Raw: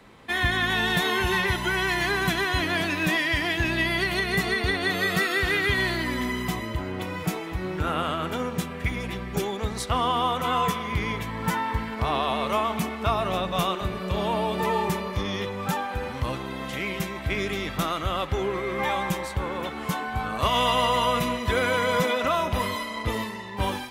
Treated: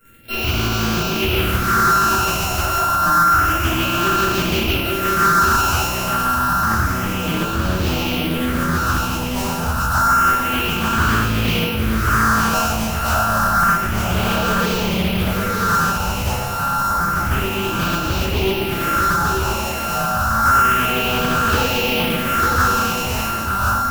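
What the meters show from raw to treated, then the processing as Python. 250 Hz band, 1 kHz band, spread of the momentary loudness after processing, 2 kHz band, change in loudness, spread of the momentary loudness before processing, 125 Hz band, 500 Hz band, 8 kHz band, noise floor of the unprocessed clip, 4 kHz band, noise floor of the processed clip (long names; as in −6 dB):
+7.5 dB, +9.5 dB, 7 LU, +6.0 dB, +8.5 dB, 8 LU, +9.0 dB, +3.5 dB, +13.0 dB, −35 dBFS, +6.0 dB, −23 dBFS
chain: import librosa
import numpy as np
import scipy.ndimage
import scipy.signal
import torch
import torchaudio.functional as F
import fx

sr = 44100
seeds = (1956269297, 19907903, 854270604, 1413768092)

p1 = np.r_[np.sort(x[:len(x) // 32 * 32].reshape(-1, 32), axis=1).ravel(), x[len(x) // 32 * 32:]]
p2 = fx.fuzz(p1, sr, gain_db=50.0, gate_db=-43.0)
p3 = p1 + (p2 * librosa.db_to_amplitude(-11.0))
p4 = fx.phaser_stages(p3, sr, stages=4, low_hz=310.0, high_hz=1800.0, hz=0.29, feedback_pct=25)
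p5 = fx.high_shelf(p4, sr, hz=10000.0, db=8.0)
p6 = fx.hum_notches(p5, sr, base_hz=50, count=4)
p7 = p6 + fx.echo_single(p6, sr, ms=899, db=-5.0, dry=0)
p8 = fx.room_shoebox(p7, sr, seeds[0], volume_m3=370.0, walls='furnished', distance_m=5.1)
p9 = fx.doppler_dist(p8, sr, depth_ms=0.43)
y = p9 * librosa.db_to_amplitude(-8.0)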